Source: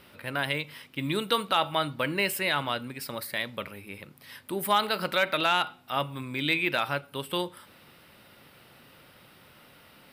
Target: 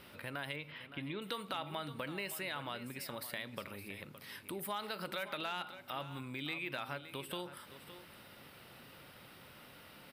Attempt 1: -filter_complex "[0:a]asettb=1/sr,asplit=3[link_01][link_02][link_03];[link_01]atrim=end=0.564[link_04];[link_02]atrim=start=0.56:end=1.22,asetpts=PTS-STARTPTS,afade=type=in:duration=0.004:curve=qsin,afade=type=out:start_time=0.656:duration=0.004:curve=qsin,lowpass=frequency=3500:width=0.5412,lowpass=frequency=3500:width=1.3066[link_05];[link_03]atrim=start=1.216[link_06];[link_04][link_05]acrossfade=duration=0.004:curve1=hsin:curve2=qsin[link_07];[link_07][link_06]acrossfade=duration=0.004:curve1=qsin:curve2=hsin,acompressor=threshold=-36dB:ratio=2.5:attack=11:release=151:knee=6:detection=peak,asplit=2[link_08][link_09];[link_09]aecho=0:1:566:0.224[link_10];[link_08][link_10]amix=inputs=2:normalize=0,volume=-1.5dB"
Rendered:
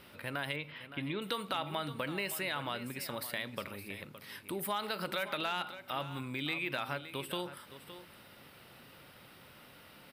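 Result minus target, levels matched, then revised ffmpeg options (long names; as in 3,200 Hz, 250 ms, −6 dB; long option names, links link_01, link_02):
downward compressor: peak gain reduction −4.5 dB
-filter_complex "[0:a]asettb=1/sr,asplit=3[link_01][link_02][link_03];[link_01]atrim=end=0.564[link_04];[link_02]atrim=start=0.56:end=1.22,asetpts=PTS-STARTPTS,afade=type=in:duration=0.004:curve=qsin,afade=type=out:start_time=0.656:duration=0.004:curve=qsin,lowpass=frequency=3500:width=0.5412,lowpass=frequency=3500:width=1.3066[link_05];[link_03]atrim=start=1.216[link_06];[link_04][link_05]acrossfade=duration=0.004:curve1=hsin:curve2=qsin[link_07];[link_07][link_06]acrossfade=duration=0.004:curve1=qsin:curve2=hsin,acompressor=threshold=-43.5dB:ratio=2.5:attack=11:release=151:knee=6:detection=peak,asplit=2[link_08][link_09];[link_09]aecho=0:1:566:0.224[link_10];[link_08][link_10]amix=inputs=2:normalize=0,volume=-1.5dB"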